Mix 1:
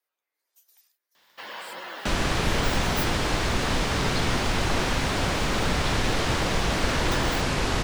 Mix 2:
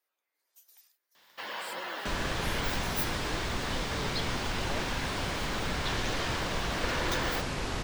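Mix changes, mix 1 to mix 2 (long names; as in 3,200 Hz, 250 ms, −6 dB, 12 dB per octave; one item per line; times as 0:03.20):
speech: send +9.0 dB
second sound −8.5 dB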